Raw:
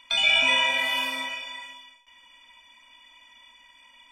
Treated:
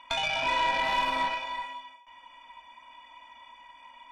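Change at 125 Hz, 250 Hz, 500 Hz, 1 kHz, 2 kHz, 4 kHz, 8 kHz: n/a, -1.0 dB, +0.5 dB, +5.0 dB, -7.0 dB, -9.5 dB, -8.0 dB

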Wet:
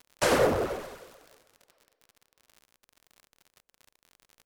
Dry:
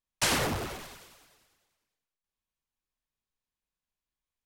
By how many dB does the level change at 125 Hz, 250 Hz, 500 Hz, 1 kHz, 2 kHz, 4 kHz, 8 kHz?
0.0, +4.5, +11.5, +4.0, +1.0, -4.0, -4.0 dB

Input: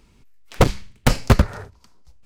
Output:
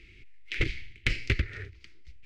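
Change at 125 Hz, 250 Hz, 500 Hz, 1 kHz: -13.5, -17.0, -18.5, -26.0 dB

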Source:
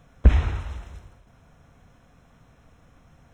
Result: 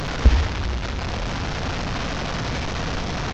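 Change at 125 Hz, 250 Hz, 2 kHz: +3.0, +8.5, +14.0 dB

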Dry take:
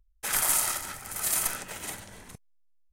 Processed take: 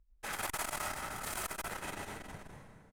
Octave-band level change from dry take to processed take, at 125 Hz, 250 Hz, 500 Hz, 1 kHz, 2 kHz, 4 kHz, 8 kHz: -1.5, -1.5, -1.5, -2.5, -4.5, -9.0, -15.0 dB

